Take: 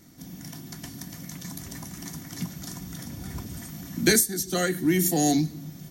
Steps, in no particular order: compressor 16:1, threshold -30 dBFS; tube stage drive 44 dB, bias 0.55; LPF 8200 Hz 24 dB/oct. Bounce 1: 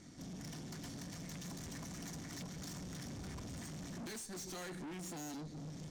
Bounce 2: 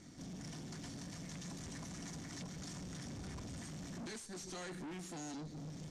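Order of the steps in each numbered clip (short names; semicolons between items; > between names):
LPF > compressor > tube stage; compressor > tube stage > LPF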